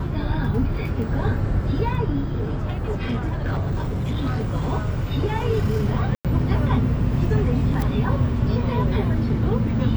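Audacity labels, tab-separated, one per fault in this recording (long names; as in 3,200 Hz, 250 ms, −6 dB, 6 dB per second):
2.200000	4.510000	clipping −19.5 dBFS
6.150000	6.250000	drop-out 97 ms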